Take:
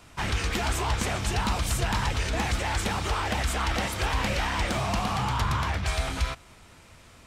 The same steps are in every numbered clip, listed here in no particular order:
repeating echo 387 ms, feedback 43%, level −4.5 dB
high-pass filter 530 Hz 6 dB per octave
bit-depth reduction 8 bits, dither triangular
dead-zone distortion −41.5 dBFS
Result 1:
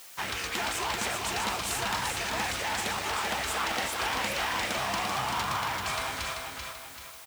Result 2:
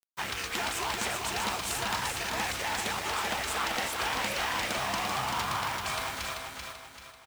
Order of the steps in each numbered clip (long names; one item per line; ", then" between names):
dead-zone distortion, then repeating echo, then bit-depth reduction, then high-pass filter
high-pass filter, then bit-depth reduction, then dead-zone distortion, then repeating echo